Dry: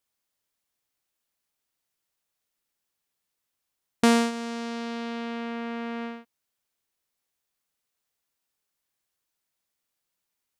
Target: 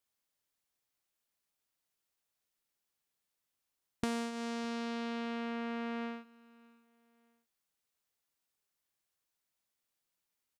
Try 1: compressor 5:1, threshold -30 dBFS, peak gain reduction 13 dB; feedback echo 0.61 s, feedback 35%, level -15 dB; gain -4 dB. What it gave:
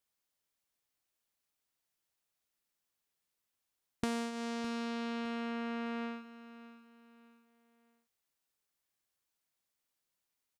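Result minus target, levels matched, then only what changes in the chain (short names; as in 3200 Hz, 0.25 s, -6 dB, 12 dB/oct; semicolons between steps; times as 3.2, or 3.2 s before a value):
echo-to-direct +9 dB
change: feedback echo 0.61 s, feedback 35%, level -24 dB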